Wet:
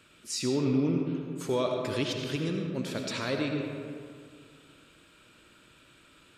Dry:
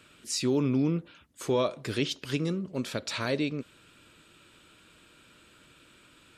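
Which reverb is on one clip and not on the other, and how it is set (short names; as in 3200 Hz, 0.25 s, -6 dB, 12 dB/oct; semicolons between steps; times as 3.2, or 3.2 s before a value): digital reverb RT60 2.2 s, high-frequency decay 0.5×, pre-delay 40 ms, DRR 2 dB; gain -2.5 dB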